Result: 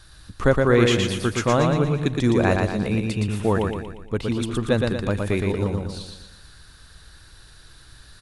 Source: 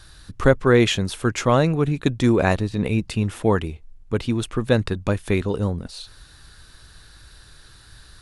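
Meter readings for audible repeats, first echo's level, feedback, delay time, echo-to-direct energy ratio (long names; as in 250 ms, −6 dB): 5, −3.5 dB, 47%, 117 ms, −2.5 dB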